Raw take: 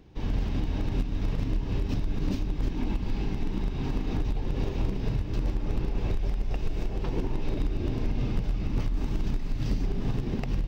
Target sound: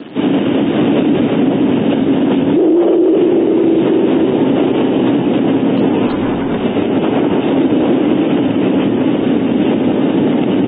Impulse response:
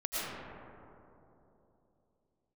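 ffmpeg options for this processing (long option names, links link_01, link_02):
-filter_complex "[0:a]aeval=exprs='0.0376*(abs(mod(val(0)/0.0376+3,4)-2)-1)':channel_layout=same,acrusher=bits=8:mix=0:aa=0.000001,aemphasis=mode=reproduction:type=riaa,asettb=1/sr,asplit=3[link_01][link_02][link_03];[link_01]atrim=end=0.814[link_04];[link_02]atrim=start=0.81:end=1.21,asetpts=PTS-STARTPTS,afade=type=in:duration=0.004:curve=qsin,afade=type=out:start_time=0.396:duration=0.004:curve=qsin,acontrast=31[link_05];[link_03]atrim=start=1.206[link_06];[link_04][link_05]acrossfade=duration=0.004:curve1=hsin:curve2=qsin[link_07];[link_07][link_06]acrossfade=duration=0.004:curve1=qsin:curve2=hsin,asplit=3[link_08][link_09][link_10];[link_08]afade=type=out:start_time=2.56:duration=0.02[link_11];[link_09]afreqshift=310,afade=type=in:start_time=2.56:duration=0.02,afade=type=out:start_time=3.15:duration=0.02[link_12];[link_10]afade=type=in:start_time=3.15:duration=0.02[link_13];[link_11][link_12][link_13]amix=inputs=3:normalize=0,highpass=frequency=240:width=0.5412,highpass=frequency=240:width=1.3066,equalizer=frequency=280:width_type=q:width=4:gain=6,equalizer=frequency=1100:width_type=q:width=4:gain=-4,equalizer=frequency=3000:width_type=q:width=4:gain=7,lowpass=frequency=5100:width=0.5412,lowpass=frequency=5100:width=1.3066,asplit=2[link_14][link_15];[1:a]atrim=start_sample=2205,asetrate=28224,aresample=44100,adelay=103[link_16];[link_15][link_16]afir=irnorm=-1:irlink=0,volume=-17.5dB[link_17];[link_14][link_17]amix=inputs=2:normalize=0,asettb=1/sr,asplit=3[link_18][link_19][link_20];[link_18]atrim=end=6.074[link_21];[link_19]atrim=start=6.07:end=6.65,asetpts=PTS-STARTPTS,afade=type=in:duration=0.004:curve=qsin,afade=type=out:start_time=0.576:duration=0.004:curve=qsin,volume=36dB,asoftclip=hard,volume=-36dB[link_22];[link_20]atrim=start=6.646[link_23];[link_21][link_22]acrossfade=duration=0.004:curve1=hsin:curve2=qsin[link_24];[link_24][link_23]acrossfade=duration=0.004:curve1=qsin:curve2=hsin,aecho=1:1:205:0.188,alimiter=level_in=25dB:limit=-1dB:release=50:level=0:latency=1,volume=-4dB" -ar 32000 -c:a aac -b:a 16k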